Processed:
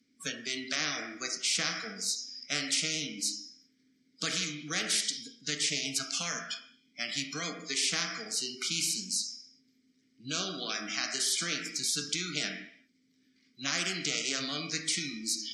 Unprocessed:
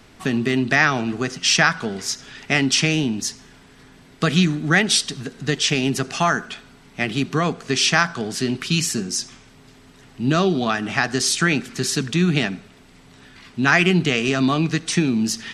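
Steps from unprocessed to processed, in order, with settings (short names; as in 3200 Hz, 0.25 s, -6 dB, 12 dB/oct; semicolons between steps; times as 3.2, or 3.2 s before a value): spectral noise reduction 28 dB; vowel filter i; resonant high shelf 4000 Hz +10 dB, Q 3; on a send at -5 dB: reverb RT60 0.60 s, pre-delay 3 ms; on the sum: spectral compressor 4:1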